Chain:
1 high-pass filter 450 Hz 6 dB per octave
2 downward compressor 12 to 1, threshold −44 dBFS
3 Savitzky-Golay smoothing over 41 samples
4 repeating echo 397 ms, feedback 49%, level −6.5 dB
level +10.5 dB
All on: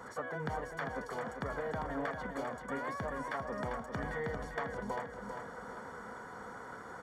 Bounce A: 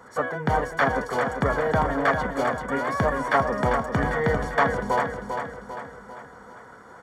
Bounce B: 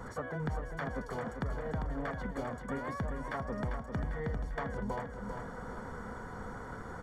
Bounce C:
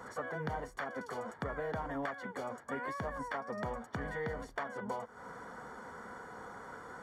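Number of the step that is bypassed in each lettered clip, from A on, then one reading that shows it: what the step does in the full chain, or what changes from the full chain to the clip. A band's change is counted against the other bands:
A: 2, average gain reduction 9.0 dB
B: 1, 125 Hz band +8.5 dB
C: 4, echo-to-direct ratio −5.5 dB to none audible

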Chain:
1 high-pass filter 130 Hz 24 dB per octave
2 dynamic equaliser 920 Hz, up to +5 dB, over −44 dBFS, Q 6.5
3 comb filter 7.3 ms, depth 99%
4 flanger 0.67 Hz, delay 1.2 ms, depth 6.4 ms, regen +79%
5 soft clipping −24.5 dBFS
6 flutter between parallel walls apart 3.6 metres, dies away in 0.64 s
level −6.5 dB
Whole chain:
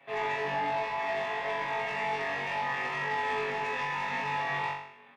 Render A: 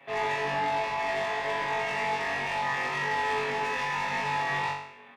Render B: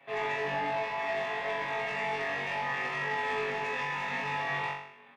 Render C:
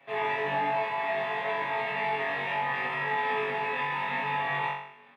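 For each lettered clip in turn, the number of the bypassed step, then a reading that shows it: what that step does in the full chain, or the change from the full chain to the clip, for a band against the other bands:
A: 4, change in integrated loudness +2.5 LU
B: 2, 1 kHz band −2.5 dB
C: 5, distortion level −16 dB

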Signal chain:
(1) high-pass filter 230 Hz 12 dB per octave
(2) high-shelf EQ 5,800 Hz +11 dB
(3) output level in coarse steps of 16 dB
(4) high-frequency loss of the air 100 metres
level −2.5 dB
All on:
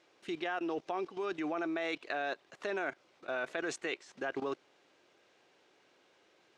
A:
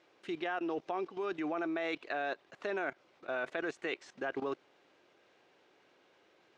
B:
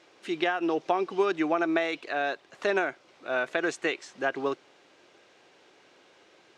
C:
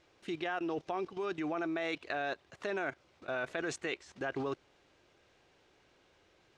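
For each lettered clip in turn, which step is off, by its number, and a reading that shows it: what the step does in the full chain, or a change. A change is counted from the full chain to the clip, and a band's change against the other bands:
2, 4 kHz band −2.5 dB
3, change in momentary loudness spread +2 LU
1, 125 Hz band +7.5 dB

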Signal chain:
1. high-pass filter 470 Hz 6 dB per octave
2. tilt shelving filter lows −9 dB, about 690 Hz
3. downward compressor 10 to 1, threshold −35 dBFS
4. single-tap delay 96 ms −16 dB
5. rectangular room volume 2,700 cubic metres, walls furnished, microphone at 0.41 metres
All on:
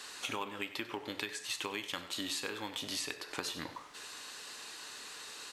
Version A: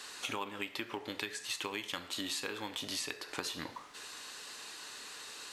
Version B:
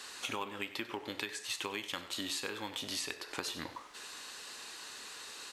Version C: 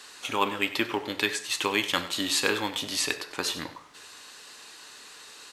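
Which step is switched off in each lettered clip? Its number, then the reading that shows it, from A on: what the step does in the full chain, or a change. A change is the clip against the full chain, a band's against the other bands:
4, echo-to-direct ratio −13.0 dB to −16.5 dB
5, echo-to-direct ratio −13.0 dB to −16.0 dB
3, average gain reduction 6.0 dB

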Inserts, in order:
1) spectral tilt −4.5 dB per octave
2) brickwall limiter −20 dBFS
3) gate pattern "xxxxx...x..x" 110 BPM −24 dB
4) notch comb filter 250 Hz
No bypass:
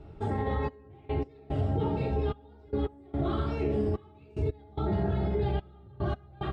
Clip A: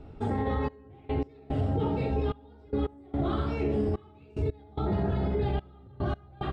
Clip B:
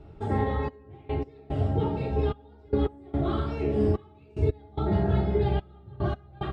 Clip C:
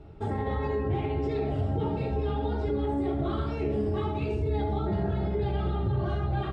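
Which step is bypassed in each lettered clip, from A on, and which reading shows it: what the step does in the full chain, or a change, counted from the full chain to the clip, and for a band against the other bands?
4, change in crest factor −2.0 dB
2, average gain reduction 2.5 dB
3, change in crest factor −2.5 dB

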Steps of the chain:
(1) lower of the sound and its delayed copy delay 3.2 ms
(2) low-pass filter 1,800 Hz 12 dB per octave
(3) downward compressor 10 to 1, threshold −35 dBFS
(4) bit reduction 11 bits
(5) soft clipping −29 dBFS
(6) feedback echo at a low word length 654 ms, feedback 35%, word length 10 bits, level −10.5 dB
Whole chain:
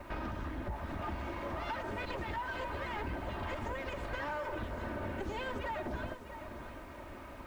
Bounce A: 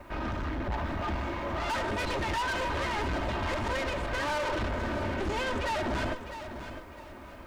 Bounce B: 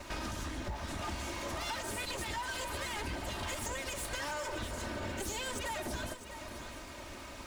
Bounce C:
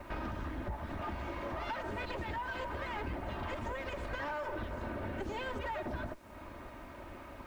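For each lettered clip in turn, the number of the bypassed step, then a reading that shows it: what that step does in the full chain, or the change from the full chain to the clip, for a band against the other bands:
3, average gain reduction 11.0 dB
2, 8 kHz band +22.0 dB
6, change in momentary loudness spread +2 LU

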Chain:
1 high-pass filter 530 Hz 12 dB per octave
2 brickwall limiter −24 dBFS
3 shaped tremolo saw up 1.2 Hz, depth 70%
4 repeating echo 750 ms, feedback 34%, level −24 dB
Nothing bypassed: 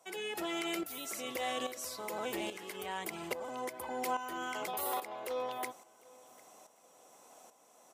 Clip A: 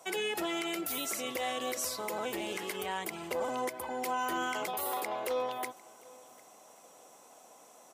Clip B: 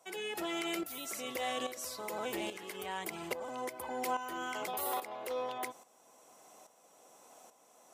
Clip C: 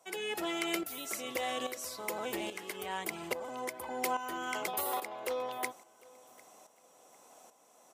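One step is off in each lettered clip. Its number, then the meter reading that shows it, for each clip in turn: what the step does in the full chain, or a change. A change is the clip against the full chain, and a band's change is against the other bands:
3, change in momentary loudness spread −14 LU
4, change in momentary loudness spread −4 LU
2, change in crest factor +4.5 dB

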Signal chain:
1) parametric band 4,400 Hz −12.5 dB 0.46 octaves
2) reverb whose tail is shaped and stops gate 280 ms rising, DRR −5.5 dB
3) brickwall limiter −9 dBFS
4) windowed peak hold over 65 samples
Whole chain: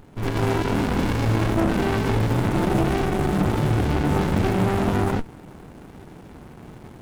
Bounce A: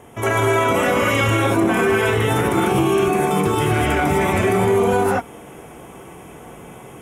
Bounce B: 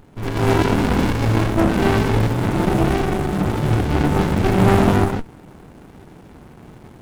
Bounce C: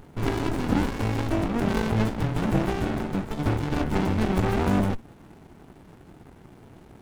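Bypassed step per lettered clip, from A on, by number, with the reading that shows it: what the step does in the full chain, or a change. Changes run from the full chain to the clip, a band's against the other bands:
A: 4, change in crest factor −3.0 dB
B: 3, average gain reduction 2.5 dB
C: 2, change in momentary loudness spread +2 LU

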